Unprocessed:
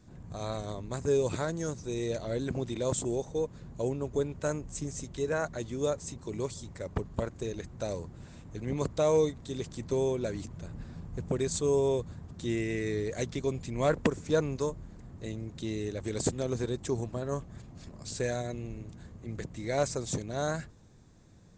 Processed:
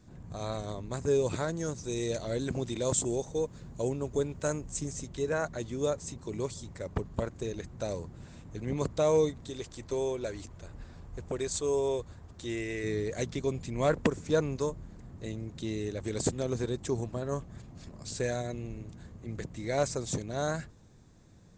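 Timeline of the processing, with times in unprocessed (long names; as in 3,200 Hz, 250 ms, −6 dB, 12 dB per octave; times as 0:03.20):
0:01.74–0:04.92: high-shelf EQ 4,500 Hz → 7,700 Hz +8.5 dB
0:09.50–0:12.84: parametric band 170 Hz −10.5 dB 1.4 octaves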